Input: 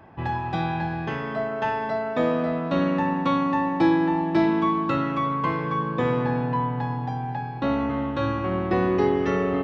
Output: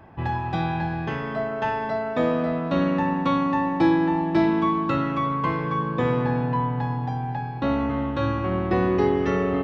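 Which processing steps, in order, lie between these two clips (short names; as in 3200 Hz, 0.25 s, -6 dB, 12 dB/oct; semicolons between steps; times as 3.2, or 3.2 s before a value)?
low shelf 76 Hz +8 dB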